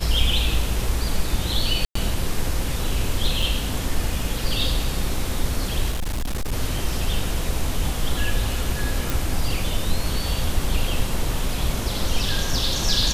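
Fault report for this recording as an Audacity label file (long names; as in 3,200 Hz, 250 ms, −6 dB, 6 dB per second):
1.850000	1.950000	drop-out 104 ms
3.420000	3.420000	drop-out 4.6 ms
5.910000	6.530000	clipping −21.5 dBFS
9.100000	9.100000	click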